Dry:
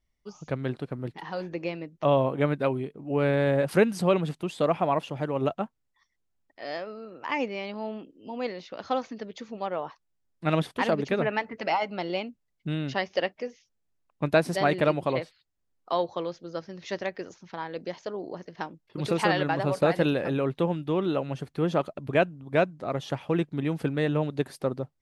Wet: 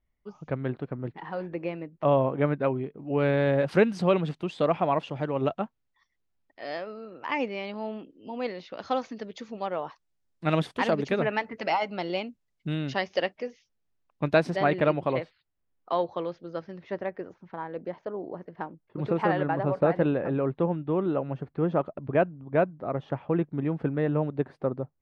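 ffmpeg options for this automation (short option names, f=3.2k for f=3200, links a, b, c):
-af "asetnsamples=n=441:p=0,asendcmd='2.98 lowpass f 4800;8.78 lowpass f 8600;13.36 lowpass f 5200;14.5 lowpass f 2900;16.79 lowpass f 1500',lowpass=2.2k"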